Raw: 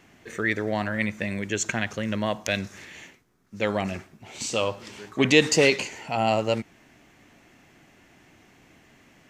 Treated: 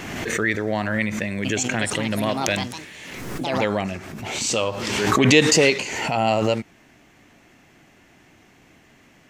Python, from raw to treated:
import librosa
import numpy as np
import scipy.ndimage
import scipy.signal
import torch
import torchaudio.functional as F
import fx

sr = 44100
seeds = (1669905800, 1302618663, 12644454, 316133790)

y = fx.echo_pitch(x, sr, ms=388, semitones=4, count=2, db_per_echo=-6.0, at=(1.06, 3.83))
y = fx.pre_swell(y, sr, db_per_s=32.0)
y = F.gain(torch.from_numpy(y), 2.0).numpy()